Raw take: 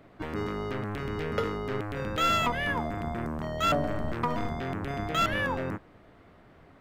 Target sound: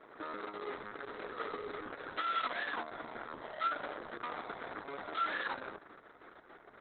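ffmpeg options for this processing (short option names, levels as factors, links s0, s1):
-af "acontrast=31,aeval=exprs='(tanh(70.8*val(0)+0.65)-tanh(0.65))/70.8':c=same,highpass=f=310:w=0.5412,highpass=f=310:w=1.3066,equalizer=f=550:t=q:w=4:g=-5,equalizer=f=1400:t=q:w=4:g=7,equalizer=f=2700:t=q:w=4:g=-9,lowpass=f=8000:w=0.5412,lowpass=f=8000:w=1.3066,volume=1.19" -ar 48000 -c:a libopus -b:a 6k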